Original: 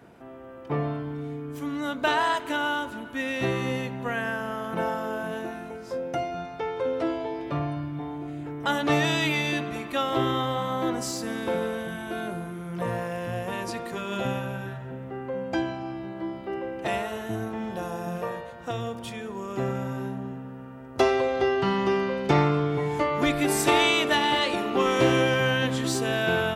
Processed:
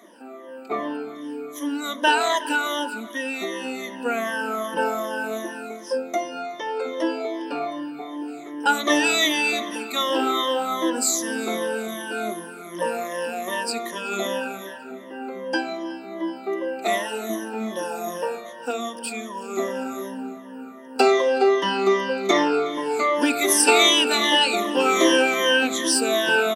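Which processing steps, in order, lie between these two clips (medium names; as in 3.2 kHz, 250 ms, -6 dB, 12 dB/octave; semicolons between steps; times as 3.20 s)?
drifting ripple filter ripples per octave 1.2, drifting -2.6 Hz, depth 19 dB; 3.01–3.88 s: compression 2.5:1, threshold -28 dBFS, peak gain reduction 7.5 dB; elliptic high-pass 220 Hz, stop band 50 dB; peaking EQ 9.1 kHz +9.5 dB 2.2 oct; feedback delay 371 ms, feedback 52%, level -23 dB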